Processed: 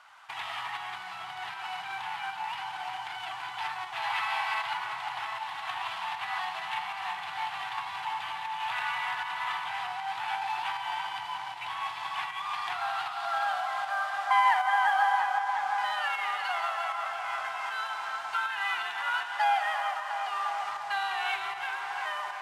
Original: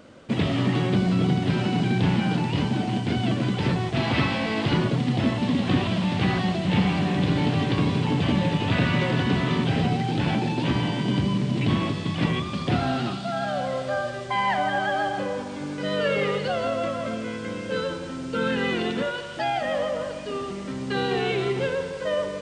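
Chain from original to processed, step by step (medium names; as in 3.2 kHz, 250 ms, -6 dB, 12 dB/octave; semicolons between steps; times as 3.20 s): CVSD coder 64 kbps; on a send: tape echo 350 ms, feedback 83%, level -6 dB, low-pass 2.2 kHz; on the sum: tremolo saw up 1.3 Hz, depth 45%; tilt shelf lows +5 dB, about 1.1 kHz; compression, threshold -24 dBFS, peak gain reduction 12 dB; elliptic high-pass 830 Hz, stop band 40 dB; treble shelf 4.8 kHz -9 dB; trim +9 dB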